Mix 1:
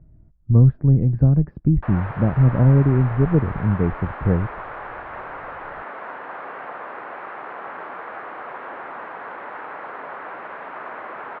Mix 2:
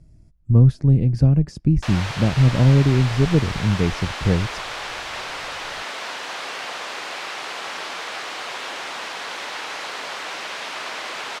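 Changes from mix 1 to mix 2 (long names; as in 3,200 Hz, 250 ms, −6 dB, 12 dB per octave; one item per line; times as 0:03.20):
background: add low-pass filter 4,100 Hz 12 dB per octave
master: remove inverse Chebyshev low-pass filter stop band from 6,700 Hz, stop band 70 dB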